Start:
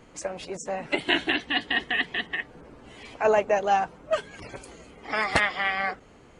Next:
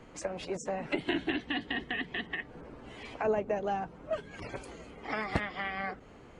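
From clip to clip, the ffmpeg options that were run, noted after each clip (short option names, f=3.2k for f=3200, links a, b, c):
-filter_complex "[0:a]highshelf=f=5.2k:g=-9,acrossover=split=370[a][b];[b]acompressor=threshold=-33dB:ratio=6[c];[a][c]amix=inputs=2:normalize=0"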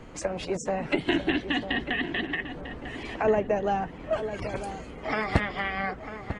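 -filter_complex "[0:a]lowshelf=f=120:g=6,asplit=2[a][b];[b]adelay=947,lowpass=f=2.1k:p=1,volume=-10dB,asplit=2[c][d];[d]adelay=947,lowpass=f=2.1k:p=1,volume=0.35,asplit=2[e][f];[f]adelay=947,lowpass=f=2.1k:p=1,volume=0.35,asplit=2[g][h];[h]adelay=947,lowpass=f=2.1k:p=1,volume=0.35[i];[a][c][e][g][i]amix=inputs=5:normalize=0,volume=5.5dB"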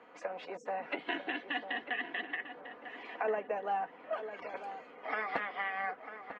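-af "highpass=580,lowpass=2.3k,aecho=1:1:4.1:0.39,volume=-5dB"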